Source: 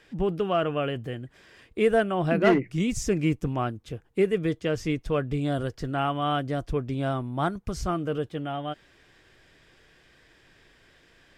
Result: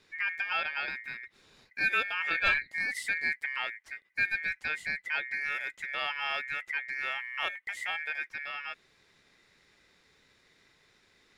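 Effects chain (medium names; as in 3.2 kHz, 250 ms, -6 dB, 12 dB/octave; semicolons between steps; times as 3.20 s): dynamic bell 3.4 kHz, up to -6 dB, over -52 dBFS, Q 2.5; ring modulator 2 kHz; trim -4 dB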